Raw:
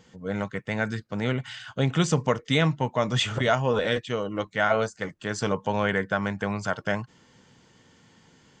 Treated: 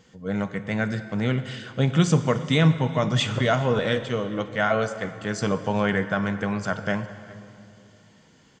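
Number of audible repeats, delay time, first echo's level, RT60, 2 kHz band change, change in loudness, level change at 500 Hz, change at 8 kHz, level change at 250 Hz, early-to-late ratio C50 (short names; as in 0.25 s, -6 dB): 1, 0.406 s, -23.5 dB, 2.4 s, +0.5 dB, +2.0 dB, +1.0 dB, +0.5 dB, +4.0 dB, 11.0 dB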